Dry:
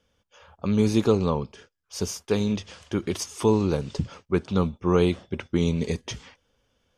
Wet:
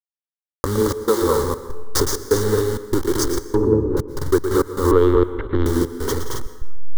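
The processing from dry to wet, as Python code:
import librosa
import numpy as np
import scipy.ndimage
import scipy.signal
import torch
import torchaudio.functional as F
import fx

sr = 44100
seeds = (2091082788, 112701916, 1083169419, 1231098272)

p1 = fx.delta_hold(x, sr, step_db=-27.5)
p2 = fx.recorder_agc(p1, sr, target_db=-16.0, rise_db_per_s=17.0, max_gain_db=30)
p3 = fx.highpass(p2, sr, hz=fx.line((0.79, 170.0), (1.21, 670.0)), slope=24, at=(0.79, 1.21), fade=0.02)
p4 = p3 + fx.echo_multitap(p3, sr, ms=(116, 176, 222, 268), db=(-10.0, -13.5, -4.5, -6.5), dry=0)
p5 = fx.lpc_vocoder(p4, sr, seeds[0], excitation='pitch_kept', order=10, at=(4.91, 5.66))
p6 = fx.step_gate(p5, sr, bpm=195, pattern='xxxx..xx', floor_db=-60.0, edge_ms=4.5)
p7 = fx.env_lowpass_down(p6, sr, base_hz=410.0, full_db=-17.5, at=(3.42, 3.97))
p8 = fx.rev_plate(p7, sr, seeds[1], rt60_s=1.3, hf_ratio=0.65, predelay_ms=105, drr_db=14.0)
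p9 = 10.0 ** (-17.0 / 20.0) * np.tanh(p8 / 10.0 ** (-17.0 / 20.0))
p10 = p8 + F.gain(torch.from_numpy(p9), -3.5).numpy()
p11 = fx.fixed_phaser(p10, sr, hz=680.0, stages=6)
y = F.gain(torch.from_numpy(p11), 4.5).numpy()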